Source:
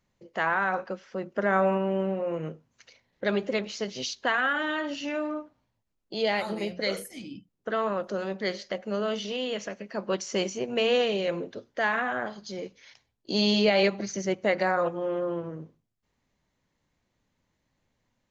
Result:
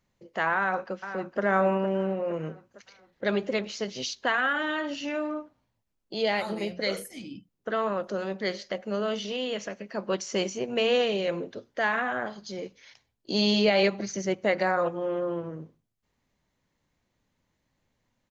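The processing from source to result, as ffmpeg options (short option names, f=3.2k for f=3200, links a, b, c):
-filter_complex "[0:a]asplit=2[a][b];[b]afade=t=in:st=0.56:d=0.01,afade=t=out:st=1.42:d=0.01,aecho=0:1:460|920|1380|1840|2300:0.298538|0.149269|0.0746346|0.0373173|0.0186586[c];[a][c]amix=inputs=2:normalize=0"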